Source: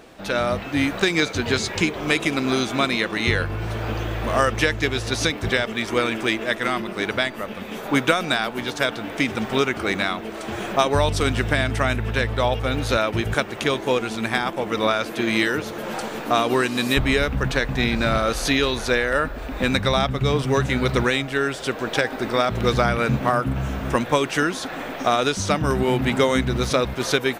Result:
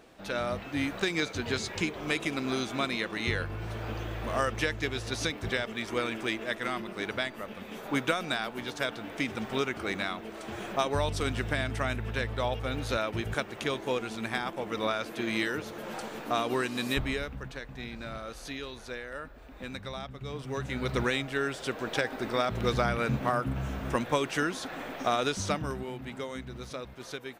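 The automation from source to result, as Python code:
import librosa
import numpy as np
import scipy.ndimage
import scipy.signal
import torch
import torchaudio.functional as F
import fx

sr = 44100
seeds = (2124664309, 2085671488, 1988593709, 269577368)

y = fx.gain(x, sr, db=fx.line((16.96, -9.5), (17.51, -19.0), (20.23, -19.0), (21.04, -8.0), (25.48, -8.0), (25.93, -19.0)))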